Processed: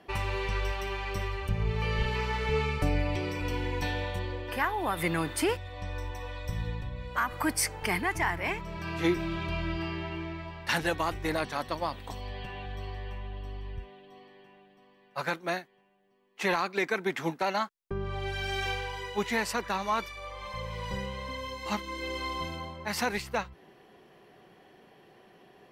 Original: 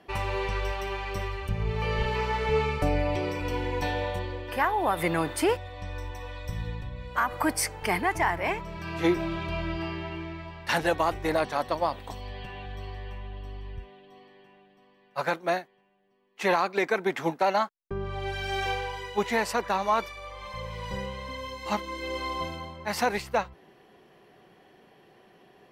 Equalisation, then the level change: dynamic EQ 650 Hz, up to -7 dB, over -38 dBFS, Q 0.88; 0.0 dB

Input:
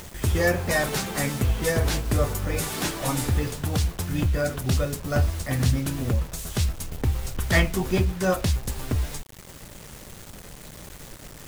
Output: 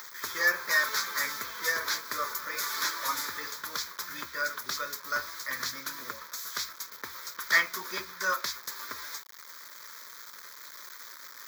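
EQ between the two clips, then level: resonant high-pass 930 Hz, resonance Q 2.1; high shelf 6500 Hz +5 dB; fixed phaser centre 2800 Hz, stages 6; 0.0 dB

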